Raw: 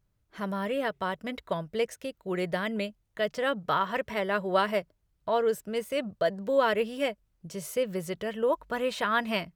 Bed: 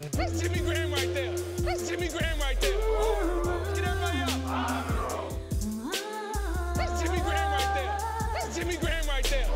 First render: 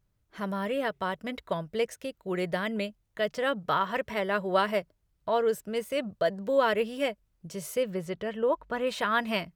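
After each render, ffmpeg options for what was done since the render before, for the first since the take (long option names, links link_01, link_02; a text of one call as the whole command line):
ffmpeg -i in.wav -filter_complex "[0:a]asettb=1/sr,asplit=3[link_01][link_02][link_03];[link_01]atrim=end=7.904[link_04];[link_02]atrim=start=7.9:end=8.87,asetpts=PTS-STARTPTS,afade=type=in:duration=0.004:curve=qsin,afade=type=out:start_time=0.966:duration=0.004:curve=qsin,lowpass=frequency=3300:poles=1[link_05];[link_03]atrim=start=8.866[link_06];[link_04][link_05]acrossfade=duration=0.004:curve1=hsin:curve2=qsin[link_07];[link_07][link_06]acrossfade=duration=0.004:curve1=qsin:curve2=hsin" out.wav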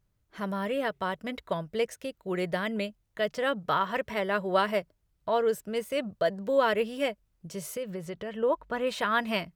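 ffmpeg -i in.wav -filter_complex "[0:a]asettb=1/sr,asplit=3[link_01][link_02][link_03];[link_01]atrim=end=7.744[link_04];[link_02]atrim=start=7.74:end=8.36,asetpts=PTS-STARTPTS,afade=type=in:duration=0.004:curve=qsin,afade=type=out:start_time=0.616:duration=0.004:curve=qsin,acompressor=threshold=-33dB:ratio=2.5:attack=3.2:release=140:knee=1:detection=peak[link_05];[link_03]atrim=start=8.356[link_06];[link_04][link_05]acrossfade=duration=0.004:curve1=hsin:curve2=qsin[link_07];[link_07][link_06]acrossfade=duration=0.004:curve1=qsin:curve2=hsin" out.wav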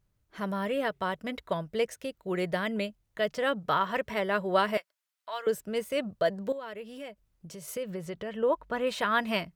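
ffmpeg -i in.wav -filter_complex "[0:a]asettb=1/sr,asplit=3[link_01][link_02][link_03];[link_01]atrim=end=4.774[link_04];[link_02]atrim=start=4.77:end=5.47,asetpts=PTS-STARTPTS,afade=type=in:duration=0.004:curve=qsin,afade=type=out:start_time=0.696:duration=0.004:curve=qsin,highpass=1300[link_05];[link_03]atrim=start=5.466[link_06];[link_04][link_05]acrossfade=duration=0.004:curve1=hsin:curve2=qsin[link_07];[link_07][link_06]acrossfade=duration=0.004:curve1=qsin:curve2=hsin,asettb=1/sr,asplit=3[link_08][link_09][link_10];[link_08]atrim=end=6.524[link_11];[link_09]atrim=start=6.52:end=7.68,asetpts=PTS-STARTPTS,afade=type=in:duration=0.004:curve=qsin,afade=type=out:start_time=1.156:duration=0.004:curve=qsin,acompressor=threshold=-42dB:ratio=3:attack=3.2:release=140:knee=1:detection=peak[link_12];[link_10]atrim=start=7.676[link_13];[link_11][link_12]acrossfade=duration=0.004:curve1=hsin:curve2=qsin[link_14];[link_14][link_13]acrossfade=duration=0.004:curve1=qsin:curve2=hsin" out.wav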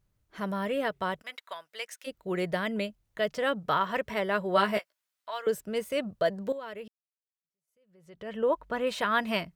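ffmpeg -i in.wav -filter_complex "[0:a]asplit=3[link_01][link_02][link_03];[link_01]afade=type=out:start_time=1.21:duration=0.02[link_04];[link_02]highpass=1200,afade=type=in:start_time=1.21:duration=0.02,afade=type=out:start_time=2.06:duration=0.02[link_05];[link_03]afade=type=in:start_time=2.06:duration=0.02[link_06];[link_04][link_05][link_06]amix=inputs=3:normalize=0,asettb=1/sr,asplit=3[link_07][link_08][link_09];[link_07]atrim=end=4.554[link_10];[link_08]atrim=start=4.55:end=5.31,asetpts=PTS-STARTPTS,afade=type=in:duration=0.004:curve=qsin,afade=type=out:start_time=0.756:duration=0.004:curve=qsin,asplit=2[link_11][link_12];[link_12]adelay=15,volume=-5dB[link_13];[link_11][link_13]amix=inputs=2:normalize=0,atrim=end_sample=33516[link_14];[link_09]atrim=start=5.306[link_15];[link_10][link_14]acrossfade=duration=0.004:curve1=hsin:curve2=qsin[link_16];[link_16][link_15]acrossfade=duration=0.004:curve1=qsin:curve2=hsin,asplit=2[link_17][link_18];[link_17]atrim=end=6.88,asetpts=PTS-STARTPTS,afade=type=out:start_time=6.876:duration=0.004:curve=hsin[link_19];[link_18]atrim=start=6.88,asetpts=PTS-STARTPTS,afade=type=in:duration=1.42:curve=exp[link_20];[link_19][link_20]concat=n=2:v=0:a=1" out.wav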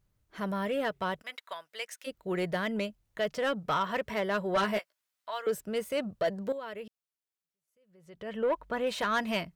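ffmpeg -i in.wav -af "asoftclip=type=tanh:threshold=-21.5dB" out.wav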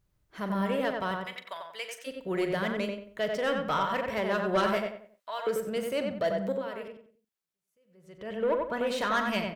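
ffmpeg -i in.wav -filter_complex "[0:a]asplit=2[link_01][link_02];[link_02]adelay=42,volume=-12.5dB[link_03];[link_01][link_03]amix=inputs=2:normalize=0,asplit=2[link_04][link_05];[link_05]adelay=92,lowpass=frequency=2300:poles=1,volume=-3dB,asplit=2[link_06][link_07];[link_07]adelay=92,lowpass=frequency=2300:poles=1,volume=0.34,asplit=2[link_08][link_09];[link_09]adelay=92,lowpass=frequency=2300:poles=1,volume=0.34,asplit=2[link_10][link_11];[link_11]adelay=92,lowpass=frequency=2300:poles=1,volume=0.34[link_12];[link_06][link_08][link_10][link_12]amix=inputs=4:normalize=0[link_13];[link_04][link_13]amix=inputs=2:normalize=0" out.wav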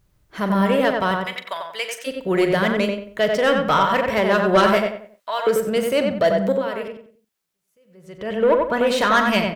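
ffmpeg -i in.wav -af "volume=11dB" out.wav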